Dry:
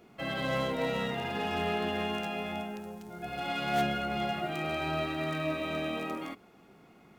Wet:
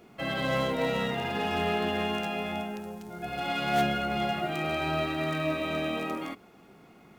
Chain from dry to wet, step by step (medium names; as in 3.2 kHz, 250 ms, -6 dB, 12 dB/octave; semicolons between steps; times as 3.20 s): companded quantiser 8-bit; trim +3 dB